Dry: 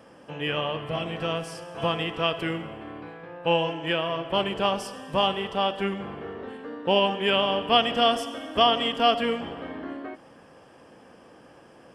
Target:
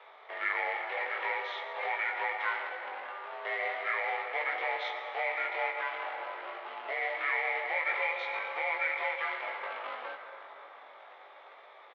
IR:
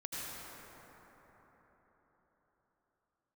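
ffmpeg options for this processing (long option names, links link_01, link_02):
-filter_complex "[0:a]aemphasis=mode=production:type=50fm,acompressor=threshold=-24dB:ratio=6,alimiter=limit=-22.5dB:level=0:latency=1:release=147,asetrate=30296,aresample=44100,atempo=1.45565,acrusher=bits=2:mode=log:mix=0:aa=0.000001,asplit=2[link_01][link_02];[link_02]adelay=20,volume=-4dB[link_03];[link_01][link_03]amix=inputs=2:normalize=0,asplit=2[link_04][link_05];[1:a]atrim=start_sample=2205[link_06];[link_05][link_06]afir=irnorm=-1:irlink=0,volume=-6.5dB[link_07];[link_04][link_07]amix=inputs=2:normalize=0,highpass=frequency=590:width_type=q:width=0.5412,highpass=frequency=590:width_type=q:width=1.307,lowpass=frequency=3200:width_type=q:width=0.5176,lowpass=frequency=3200:width_type=q:width=0.7071,lowpass=frequency=3200:width_type=q:width=1.932,afreqshift=53"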